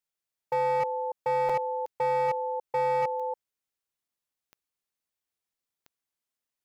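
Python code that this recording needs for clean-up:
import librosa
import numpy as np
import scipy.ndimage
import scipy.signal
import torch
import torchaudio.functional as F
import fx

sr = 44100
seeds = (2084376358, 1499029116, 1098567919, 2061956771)

y = fx.fix_declip(x, sr, threshold_db=-22.0)
y = fx.fix_declick_ar(y, sr, threshold=10.0)
y = fx.fix_interpolate(y, sr, at_s=(1.49, 4.08), length_ms=5.1)
y = fx.fix_echo_inverse(y, sr, delay_ms=281, level_db=-7.0)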